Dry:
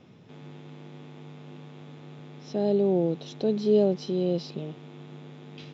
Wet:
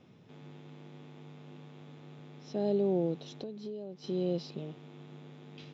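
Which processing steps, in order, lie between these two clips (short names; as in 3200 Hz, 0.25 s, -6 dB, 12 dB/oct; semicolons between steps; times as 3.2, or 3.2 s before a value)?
3.28–4.04 compressor 10:1, threshold -33 dBFS, peak gain reduction 16.5 dB; gain -5.5 dB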